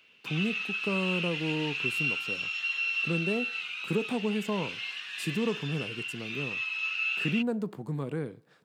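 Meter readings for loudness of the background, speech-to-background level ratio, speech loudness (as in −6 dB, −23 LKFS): −31.5 LKFS, −2.5 dB, −34.0 LKFS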